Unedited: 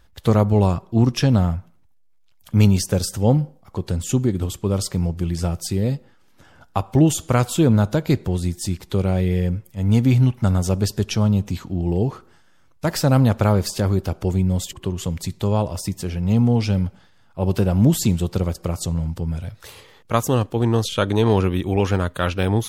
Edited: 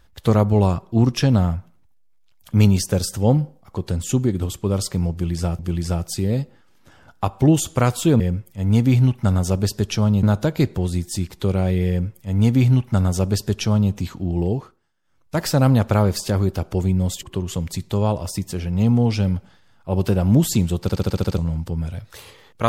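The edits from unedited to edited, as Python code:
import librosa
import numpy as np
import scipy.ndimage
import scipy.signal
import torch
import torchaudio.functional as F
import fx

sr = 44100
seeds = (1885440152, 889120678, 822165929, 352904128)

y = fx.edit(x, sr, fx.repeat(start_s=5.12, length_s=0.47, count=2),
    fx.duplicate(start_s=9.39, length_s=2.03, to_s=7.73),
    fx.fade_down_up(start_s=11.94, length_s=0.95, db=-18.0, fade_s=0.36),
    fx.stutter_over(start_s=18.32, slice_s=0.07, count=8), tone=tone)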